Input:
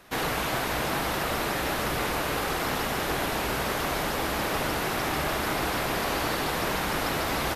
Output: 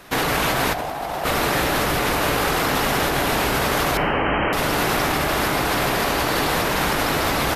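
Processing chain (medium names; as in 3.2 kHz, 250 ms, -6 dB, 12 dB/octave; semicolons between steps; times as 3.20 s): 0.74–1.24 s: peaking EQ 730 Hz +14 dB 0.75 oct; 3.97–4.53 s: brick-wall FIR low-pass 3.2 kHz; compressor with a negative ratio -29 dBFS, ratio -1; simulated room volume 820 m³, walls mixed, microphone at 0.32 m; trim +7.5 dB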